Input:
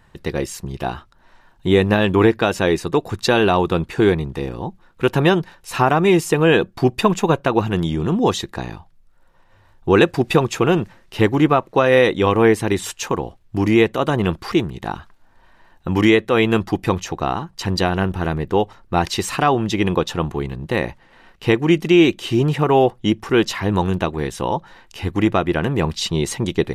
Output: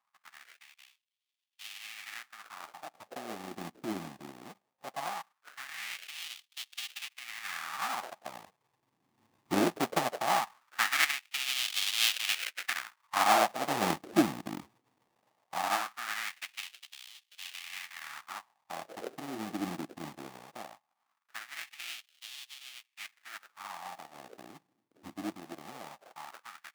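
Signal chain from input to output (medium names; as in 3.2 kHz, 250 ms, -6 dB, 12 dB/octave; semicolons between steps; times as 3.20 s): Doppler pass-by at 12.01 s, 13 m/s, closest 16 m; AM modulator 120 Hz, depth 35%; inverse Chebyshev band-stop 480–3700 Hz, stop band 40 dB; sample-rate reducer 1 kHz, jitter 20%; LFO high-pass sine 0.19 Hz 310–3200 Hz; trim +5.5 dB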